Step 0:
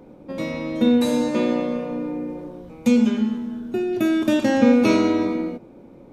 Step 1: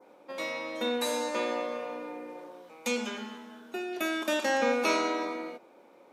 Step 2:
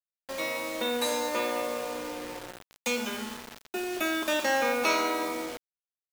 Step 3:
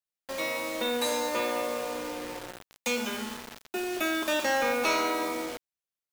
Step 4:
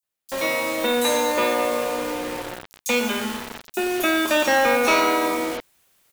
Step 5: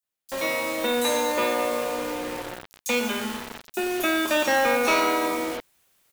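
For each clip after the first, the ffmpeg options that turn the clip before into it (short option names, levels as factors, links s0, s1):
-af "highpass=750,adynamicequalizer=threshold=0.00631:dfrequency=3100:dqfactor=1.1:tfrequency=3100:tqfactor=1.1:attack=5:release=100:ratio=0.375:range=2:mode=cutabove:tftype=bell"
-filter_complex "[0:a]acrossover=split=600|3300[s0][s1][s2];[s0]alimiter=level_in=2:limit=0.0631:level=0:latency=1:release=100,volume=0.501[s3];[s3][s1][s2]amix=inputs=3:normalize=0,acrusher=bits=6:mix=0:aa=0.000001,volume=1.33"
-af "asoftclip=type=tanh:threshold=0.112,volume=1.12"
-filter_complex "[0:a]areverse,acompressor=mode=upward:threshold=0.00316:ratio=2.5,areverse,acrossover=split=5300[s0][s1];[s0]adelay=30[s2];[s2][s1]amix=inputs=2:normalize=0,volume=2.66"
-af "acrusher=bits=5:mode=log:mix=0:aa=0.000001,volume=0.708"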